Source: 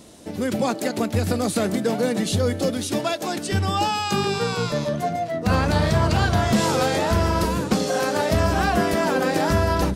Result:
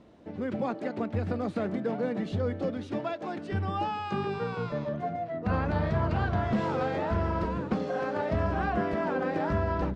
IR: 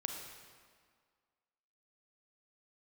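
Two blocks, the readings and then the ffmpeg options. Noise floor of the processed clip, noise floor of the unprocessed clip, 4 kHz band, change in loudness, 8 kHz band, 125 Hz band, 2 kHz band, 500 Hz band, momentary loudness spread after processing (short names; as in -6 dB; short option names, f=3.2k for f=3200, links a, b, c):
-41 dBFS, -32 dBFS, -19.0 dB, -8.5 dB, under -30 dB, -8.0 dB, -10.0 dB, -8.0 dB, 5 LU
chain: -af "lowpass=2k,volume=-8dB"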